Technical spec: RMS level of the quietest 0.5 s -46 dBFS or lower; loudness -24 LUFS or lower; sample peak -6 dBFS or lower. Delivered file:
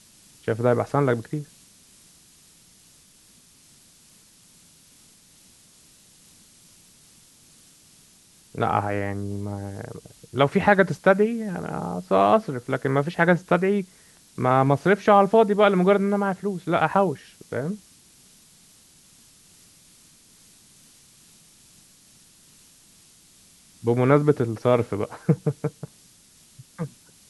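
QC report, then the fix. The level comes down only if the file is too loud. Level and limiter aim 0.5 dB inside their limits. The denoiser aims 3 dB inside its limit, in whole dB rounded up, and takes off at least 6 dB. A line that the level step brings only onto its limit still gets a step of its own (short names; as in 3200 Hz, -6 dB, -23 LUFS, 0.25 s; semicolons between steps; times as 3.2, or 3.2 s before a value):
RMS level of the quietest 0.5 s -55 dBFS: OK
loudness -22.5 LUFS: fail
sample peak -4.0 dBFS: fail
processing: gain -2 dB; limiter -6.5 dBFS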